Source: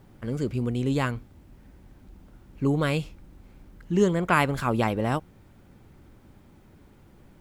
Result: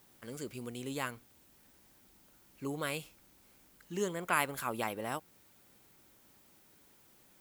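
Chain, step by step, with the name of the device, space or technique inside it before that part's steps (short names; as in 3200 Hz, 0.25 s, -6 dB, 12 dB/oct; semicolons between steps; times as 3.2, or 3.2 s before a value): dynamic EQ 5400 Hz, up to -6 dB, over -48 dBFS, Q 0.77; turntable without a phono preamp (RIAA curve recording; white noise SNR 29 dB); gain -8.5 dB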